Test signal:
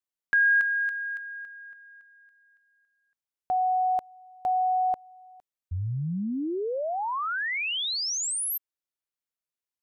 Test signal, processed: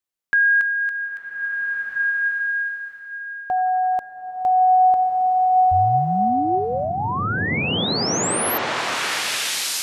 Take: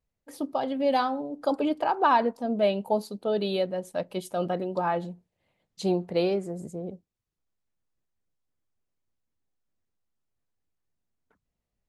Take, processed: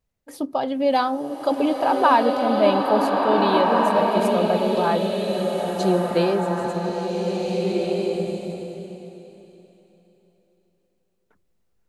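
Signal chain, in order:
slow-attack reverb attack 1,730 ms, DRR −1 dB
level +4.5 dB

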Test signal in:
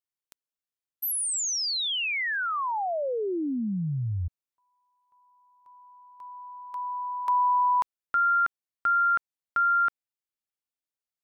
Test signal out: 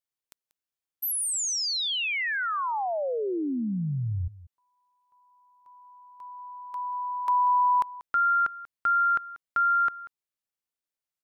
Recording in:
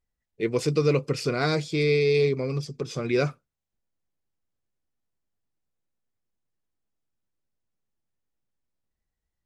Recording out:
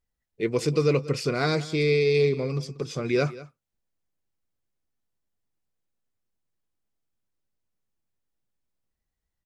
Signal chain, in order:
single-tap delay 188 ms −18 dB

